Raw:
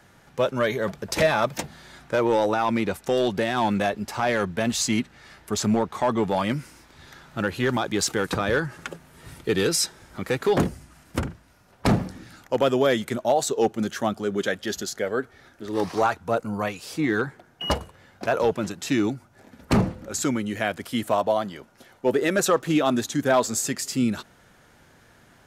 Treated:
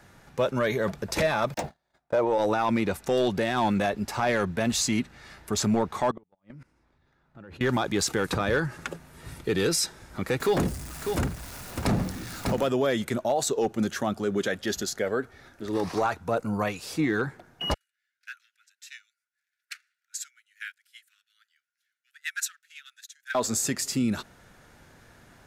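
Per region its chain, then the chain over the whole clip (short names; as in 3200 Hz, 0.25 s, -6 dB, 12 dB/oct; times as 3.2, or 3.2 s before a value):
1.54–2.38 median filter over 3 samples + gate -43 dBFS, range -36 dB + bell 680 Hz +11.5 dB 1.1 oct
6.11–7.61 LPF 1300 Hz 6 dB/oct + level quantiser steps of 23 dB + flipped gate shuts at -28 dBFS, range -35 dB
10.4–12.67 zero-crossing step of -39 dBFS + high shelf 5000 Hz +6 dB + echo 0.599 s -9.5 dB
17.74–23.35 steep high-pass 1400 Hz 96 dB/oct + upward expander 2.5:1, over -40 dBFS
whole clip: low shelf 66 Hz +6 dB; notch 3100 Hz, Q 21; limiter -16.5 dBFS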